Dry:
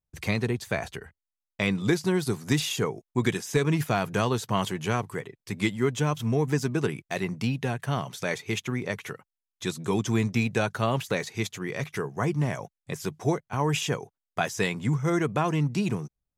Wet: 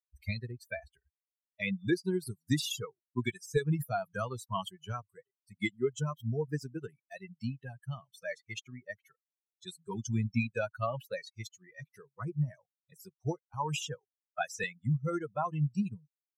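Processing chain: expander on every frequency bin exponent 3; 13.52–14.64 s: three bands compressed up and down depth 40%

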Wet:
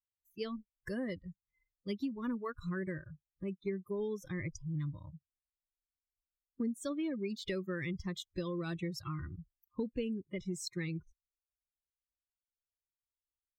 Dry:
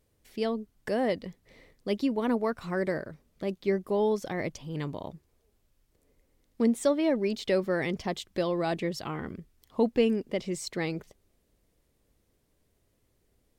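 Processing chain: expander on every frequency bin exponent 1.5; FFT filter 100 Hz 0 dB, 490 Hz -10 dB, 750 Hz -28 dB, 1.1 kHz -8 dB; spectral noise reduction 27 dB; compression 5:1, threshold -41 dBFS, peak gain reduction 13 dB; trim +7 dB

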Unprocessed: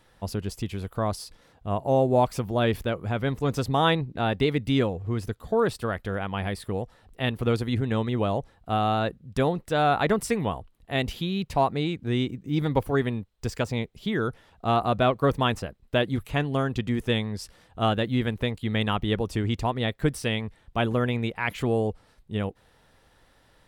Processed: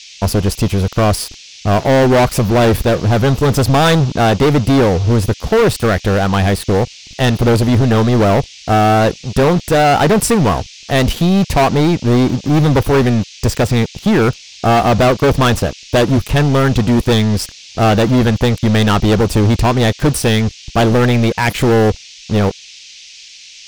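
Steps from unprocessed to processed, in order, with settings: peaking EQ 3.2 kHz -4.5 dB 3 oct; waveshaping leveller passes 5; band noise 2.3–6.4 kHz -40 dBFS; trim +2.5 dB

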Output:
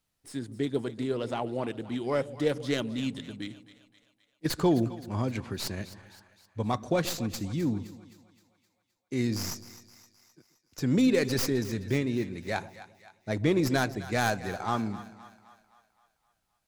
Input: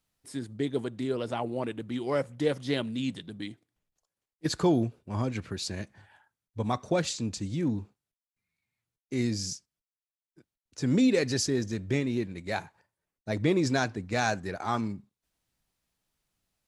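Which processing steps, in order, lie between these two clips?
tracing distortion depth 0.11 ms; 9.26–10.96 s: peaking EQ 9.3 kHz -5.5 dB 0.21 oct; two-band feedback delay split 650 Hz, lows 132 ms, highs 260 ms, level -15 dB

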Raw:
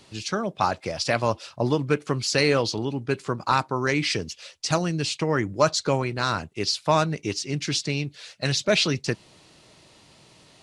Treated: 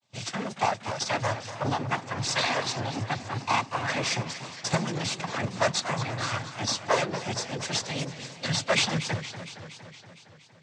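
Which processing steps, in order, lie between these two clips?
comb filter that takes the minimum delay 1.2 ms; noise-vocoded speech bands 16; expander -46 dBFS; modulated delay 232 ms, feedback 67%, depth 171 cents, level -12.5 dB

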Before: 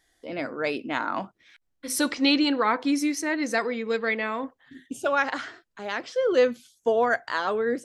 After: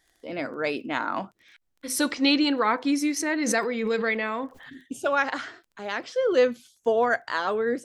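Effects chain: crackle 18 per s -46 dBFS; 3.16–4.85 s: swell ahead of each attack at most 37 dB/s

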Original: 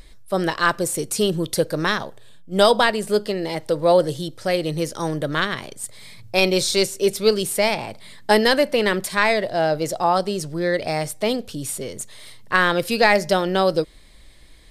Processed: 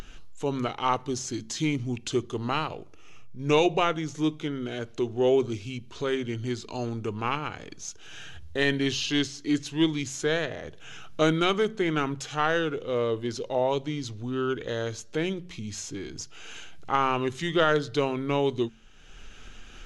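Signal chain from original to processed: upward compressor, threshold -24 dBFS; peaking EQ 12 kHz -13.5 dB 0.33 oct; hum notches 60/120/180/240/300 Hz; speed mistake 45 rpm record played at 33 rpm; trim -7 dB

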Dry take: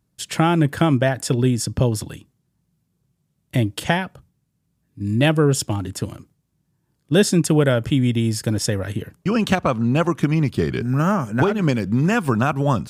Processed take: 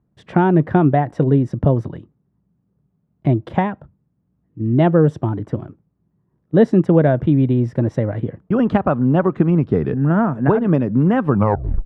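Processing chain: tape stop on the ending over 0.59 s; low-pass 1 kHz 12 dB/octave; speed mistake 44.1 kHz file played as 48 kHz; trim +3.5 dB

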